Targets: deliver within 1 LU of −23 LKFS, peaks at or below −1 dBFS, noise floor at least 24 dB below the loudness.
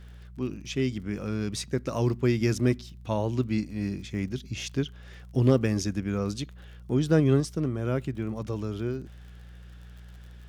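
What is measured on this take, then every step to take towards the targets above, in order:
crackle rate 40 per second; mains hum 60 Hz; hum harmonics up to 180 Hz; level of the hum −40 dBFS; integrated loudness −28.5 LKFS; sample peak −9.0 dBFS; target loudness −23.0 LKFS
→ click removal
hum removal 60 Hz, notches 3
level +5.5 dB

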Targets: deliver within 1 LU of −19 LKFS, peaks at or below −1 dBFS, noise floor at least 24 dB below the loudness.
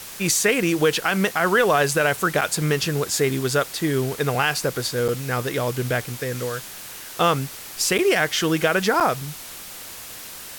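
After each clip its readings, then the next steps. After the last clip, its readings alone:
number of dropouts 4; longest dropout 7.0 ms; background noise floor −38 dBFS; target noise floor −46 dBFS; integrated loudness −21.5 LKFS; sample peak −7.0 dBFS; target loudness −19.0 LKFS
→ repair the gap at 0:02.41/0:05.08/0:07.98/0:09.00, 7 ms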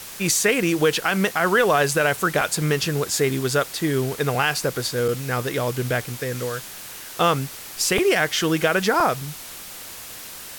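number of dropouts 0; background noise floor −38 dBFS; target noise floor −46 dBFS
→ broadband denoise 8 dB, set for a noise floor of −38 dBFS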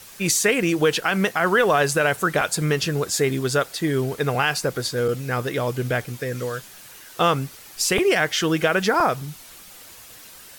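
background noise floor −44 dBFS; target noise floor −46 dBFS
→ broadband denoise 6 dB, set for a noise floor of −44 dBFS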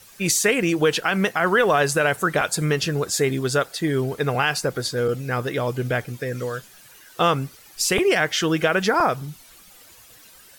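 background noise floor −49 dBFS; integrated loudness −21.5 LKFS; sample peak −7.5 dBFS; target loudness −19.0 LKFS
→ level +2.5 dB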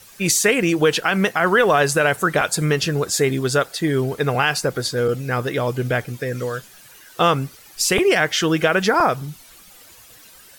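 integrated loudness −19.0 LKFS; sample peak −5.0 dBFS; background noise floor −46 dBFS

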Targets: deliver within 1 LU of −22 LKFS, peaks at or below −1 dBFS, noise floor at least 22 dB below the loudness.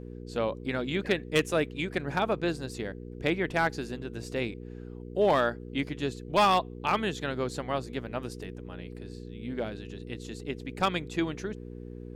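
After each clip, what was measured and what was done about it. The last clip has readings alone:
share of clipped samples 0.3%; peaks flattened at −17.0 dBFS; mains hum 60 Hz; hum harmonics up to 480 Hz; level of the hum −39 dBFS; integrated loudness −30.5 LKFS; sample peak −17.0 dBFS; target loudness −22.0 LKFS
→ clipped peaks rebuilt −17 dBFS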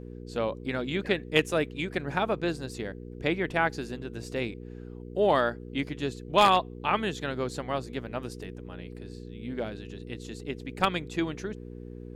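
share of clipped samples 0.0%; mains hum 60 Hz; hum harmonics up to 480 Hz; level of the hum −39 dBFS
→ hum removal 60 Hz, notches 8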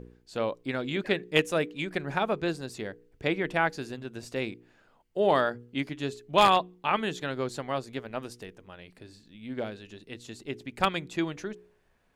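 mains hum none found; integrated loudness −29.5 LKFS; sample peak −7.5 dBFS; target loudness −22.0 LKFS
→ level +7.5 dB
brickwall limiter −1 dBFS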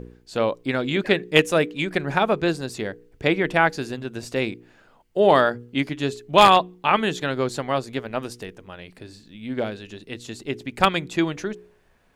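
integrated loudness −22.5 LKFS; sample peak −1.0 dBFS; background noise floor −57 dBFS

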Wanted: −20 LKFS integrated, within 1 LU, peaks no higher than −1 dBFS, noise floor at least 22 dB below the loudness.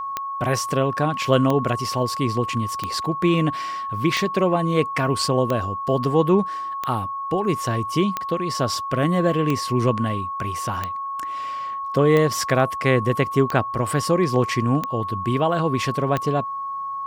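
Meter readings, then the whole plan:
number of clicks 13; interfering tone 1,100 Hz; level of the tone −26 dBFS; integrated loudness −22.0 LKFS; sample peak −3.5 dBFS; target loudness −20.0 LKFS
→ click removal
notch filter 1,100 Hz, Q 30
level +2 dB

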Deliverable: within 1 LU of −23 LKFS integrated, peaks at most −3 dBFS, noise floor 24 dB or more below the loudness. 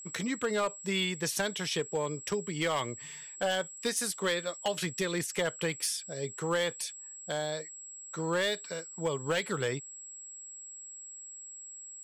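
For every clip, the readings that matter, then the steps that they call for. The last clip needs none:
share of clipped samples 0.6%; peaks flattened at −23.0 dBFS; interfering tone 7,700 Hz; level of the tone −44 dBFS; integrated loudness −32.5 LKFS; sample peak −23.0 dBFS; target loudness −23.0 LKFS
→ clipped peaks rebuilt −23 dBFS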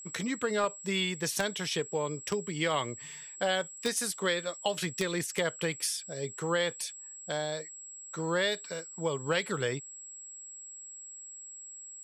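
share of clipped samples 0.0%; interfering tone 7,700 Hz; level of the tone −44 dBFS
→ notch filter 7,700 Hz, Q 30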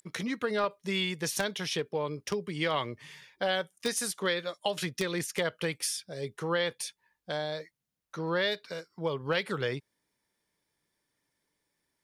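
interfering tone none found; integrated loudness −32.5 LKFS; sample peak −14.0 dBFS; target loudness −23.0 LKFS
→ level +9.5 dB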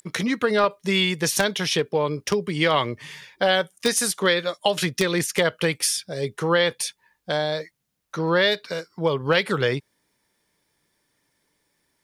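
integrated loudness −23.0 LKFS; sample peak −4.5 dBFS; background noise floor −72 dBFS

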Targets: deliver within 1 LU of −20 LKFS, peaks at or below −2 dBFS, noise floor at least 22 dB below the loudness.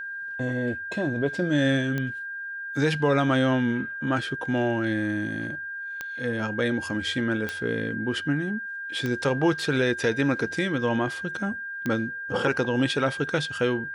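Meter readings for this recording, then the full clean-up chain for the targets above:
number of clicks 5; interfering tone 1,600 Hz; level of the tone −32 dBFS; integrated loudness −26.5 LKFS; sample peak −12.0 dBFS; target loudness −20.0 LKFS
→ click removal
notch filter 1,600 Hz, Q 30
level +6.5 dB

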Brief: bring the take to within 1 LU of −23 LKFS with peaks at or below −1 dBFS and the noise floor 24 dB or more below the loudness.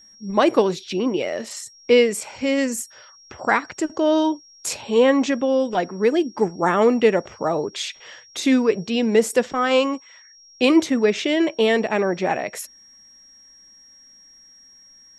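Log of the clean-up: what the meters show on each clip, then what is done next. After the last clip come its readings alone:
interfering tone 5,600 Hz; level of the tone −47 dBFS; integrated loudness −20.5 LKFS; sample peak −4.0 dBFS; target loudness −23.0 LKFS
→ notch filter 5,600 Hz, Q 30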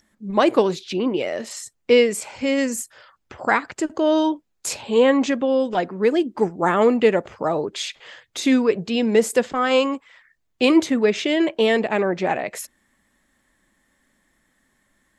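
interfering tone none found; integrated loudness −20.5 LKFS; sample peak −4.0 dBFS; target loudness −23.0 LKFS
→ level −2.5 dB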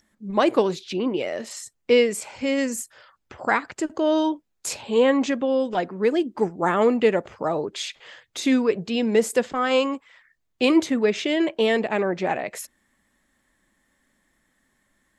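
integrated loudness −23.0 LKFS; sample peak −6.5 dBFS; background noise floor −73 dBFS

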